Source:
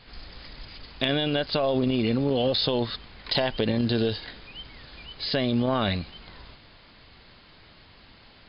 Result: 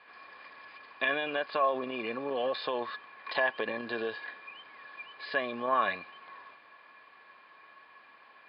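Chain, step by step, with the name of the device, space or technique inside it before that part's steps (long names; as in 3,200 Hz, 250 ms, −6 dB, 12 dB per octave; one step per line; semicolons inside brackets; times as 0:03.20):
tin-can telephone (band-pass filter 530–2,000 Hz; hollow resonant body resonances 1,100/1,700/2,400 Hz, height 18 dB, ringing for 75 ms)
level −3 dB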